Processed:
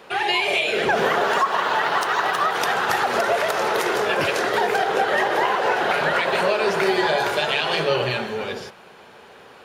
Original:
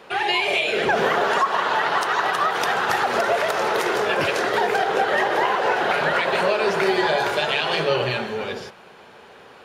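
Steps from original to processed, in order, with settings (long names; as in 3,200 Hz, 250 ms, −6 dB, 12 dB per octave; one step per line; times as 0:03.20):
0:01.29–0:02.42: running median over 3 samples
high-shelf EQ 9,000 Hz +5 dB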